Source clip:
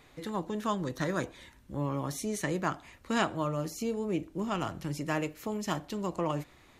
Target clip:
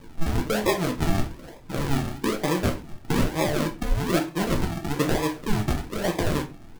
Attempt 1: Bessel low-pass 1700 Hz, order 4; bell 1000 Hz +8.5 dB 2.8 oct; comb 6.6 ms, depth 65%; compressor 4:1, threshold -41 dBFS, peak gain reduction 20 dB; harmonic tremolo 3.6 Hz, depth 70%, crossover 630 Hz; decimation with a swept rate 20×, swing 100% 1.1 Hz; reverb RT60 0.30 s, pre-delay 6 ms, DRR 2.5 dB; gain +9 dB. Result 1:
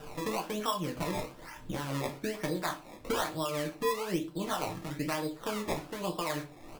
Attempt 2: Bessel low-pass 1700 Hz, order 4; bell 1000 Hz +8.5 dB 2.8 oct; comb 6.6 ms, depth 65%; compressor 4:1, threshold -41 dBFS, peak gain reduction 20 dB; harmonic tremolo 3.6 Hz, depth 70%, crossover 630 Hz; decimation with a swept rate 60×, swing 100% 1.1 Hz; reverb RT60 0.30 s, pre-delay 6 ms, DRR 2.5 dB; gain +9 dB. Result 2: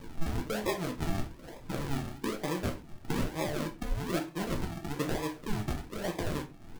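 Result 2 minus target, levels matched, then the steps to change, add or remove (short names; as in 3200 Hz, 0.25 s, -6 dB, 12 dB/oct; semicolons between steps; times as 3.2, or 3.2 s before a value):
compressor: peak gain reduction +9 dB
change: compressor 4:1, threshold -29 dBFS, peak gain reduction 11 dB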